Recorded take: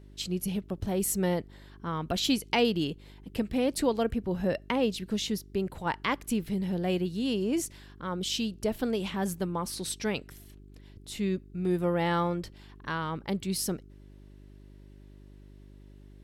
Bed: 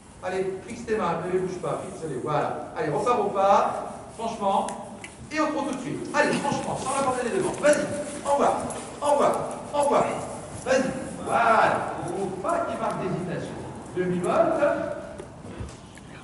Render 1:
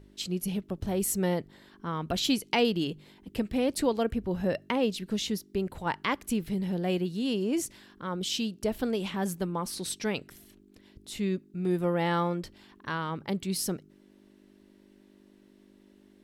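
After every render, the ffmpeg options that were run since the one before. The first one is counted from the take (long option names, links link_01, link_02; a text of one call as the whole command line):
ffmpeg -i in.wav -af "bandreject=frequency=50:width_type=h:width=4,bandreject=frequency=100:width_type=h:width=4,bandreject=frequency=150:width_type=h:width=4" out.wav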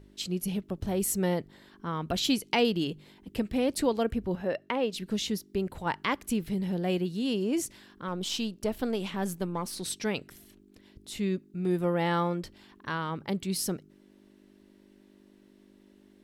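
ffmpeg -i in.wav -filter_complex "[0:a]asettb=1/sr,asplit=3[link_01][link_02][link_03];[link_01]atrim=end=4.354[link_04];[link_02]atrim=start=4.35:end=4.93,asetpts=PTS-STARTPTS,afade=type=in:duration=0.004:curve=qsin,afade=type=out:start_time=0.576:duration=0.004:curve=qsin,bass=frequency=250:gain=-10,treble=frequency=4000:gain=-9[link_05];[link_03]atrim=start=4.926[link_06];[link_04][link_05]acrossfade=duration=0.004:curve1=hsin:curve2=qsin[link_07];[link_07][link_06]acrossfade=duration=0.004:curve1=qsin:curve2=hsin,asettb=1/sr,asplit=3[link_08][link_09][link_10];[link_08]atrim=end=8.084[link_11];[link_09]atrim=start=8.08:end=9.83,asetpts=PTS-STARTPTS,afade=type=in:duration=0.004:curve=qsin,afade=type=out:start_time=1.746:duration=0.004:curve=qsin,aeval=exprs='if(lt(val(0),0),0.708*val(0),val(0))':channel_layout=same[link_12];[link_10]atrim=start=9.826[link_13];[link_11][link_12]acrossfade=duration=0.004:curve1=hsin:curve2=qsin[link_14];[link_14][link_13]acrossfade=duration=0.004:curve1=qsin:curve2=hsin" out.wav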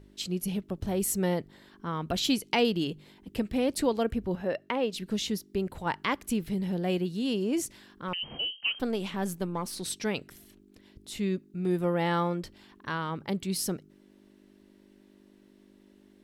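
ffmpeg -i in.wav -filter_complex "[0:a]asettb=1/sr,asplit=3[link_01][link_02][link_03];[link_01]atrim=end=8.134[link_04];[link_02]atrim=start=8.13:end=8.8,asetpts=PTS-STARTPTS,afade=type=in:duration=0.004:curve=qsin,afade=type=out:start_time=0.666:duration=0.004:curve=qsin,lowpass=frequency=2700:width_type=q:width=0.5098,lowpass=frequency=2700:width_type=q:width=0.6013,lowpass=frequency=2700:width_type=q:width=0.9,lowpass=frequency=2700:width_type=q:width=2.563,afreqshift=-3200[link_05];[link_03]atrim=start=8.796[link_06];[link_04][link_05]acrossfade=duration=0.004:curve1=hsin:curve2=qsin[link_07];[link_07][link_06]acrossfade=duration=0.004:curve1=qsin:curve2=hsin" out.wav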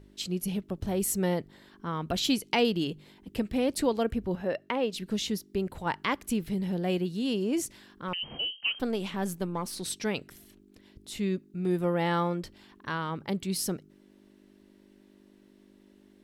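ffmpeg -i in.wav -af anull out.wav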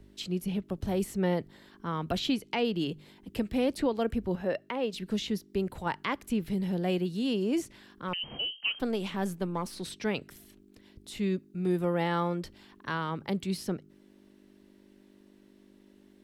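ffmpeg -i in.wav -filter_complex "[0:a]acrossover=split=110|520|3800[link_01][link_02][link_03][link_04];[link_04]acompressor=threshold=-46dB:ratio=6[link_05];[link_01][link_02][link_03][link_05]amix=inputs=4:normalize=0,alimiter=limit=-18.5dB:level=0:latency=1:release=277" out.wav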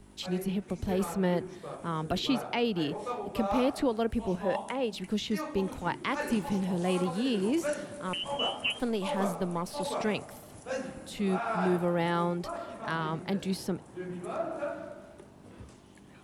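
ffmpeg -i in.wav -i bed.wav -filter_complex "[1:a]volume=-13dB[link_01];[0:a][link_01]amix=inputs=2:normalize=0" out.wav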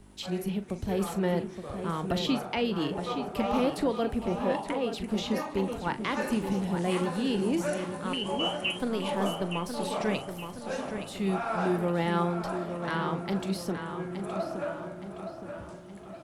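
ffmpeg -i in.wav -filter_complex "[0:a]asplit=2[link_01][link_02];[link_02]adelay=41,volume=-12.5dB[link_03];[link_01][link_03]amix=inputs=2:normalize=0,asplit=2[link_04][link_05];[link_05]adelay=869,lowpass=frequency=4100:poles=1,volume=-7.5dB,asplit=2[link_06][link_07];[link_07]adelay=869,lowpass=frequency=4100:poles=1,volume=0.51,asplit=2[link_08][link_09];[link_09]adelay=869,lowpass=frequency=4100:poles=1,volume=0.51,asplit=2[link_10][link_11];[link_11]adelay=869,lowpass=frequency=4100:poles=1,volume=0.51,asplit=2[link_12][link_13];[link_13]adelay=869,lowpass=frequency=4100:poles=1,volume=0.51,asplit=2[link_14][link_15];[link_15]adelay=869,lowpass=frequency=4100:poles=1,volume=0.51[link_16];[link_06][link_08][link_10][link_12][link_14][link_16]amix=inputs=6:normalize=0[link_17];[link_04][link_17]amix=inputs=2:normalize=0" out.wav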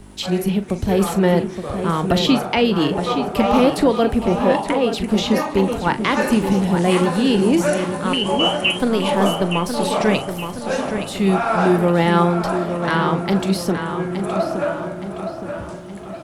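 ffmpeg -i in.wav -af "volume=12dB" out.wav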